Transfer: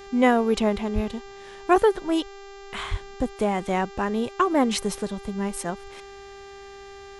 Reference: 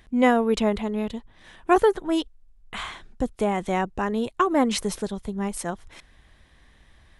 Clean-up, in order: de-hum 396.5 Hz, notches 19; de-plosive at 0.94/2.90 s

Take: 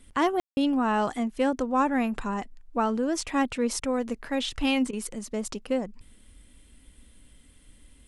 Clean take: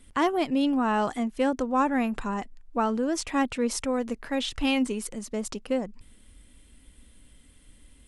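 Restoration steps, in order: room tone fill 0.40–0.57 s; interpolate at 3.80/4.91 s, 19 ms

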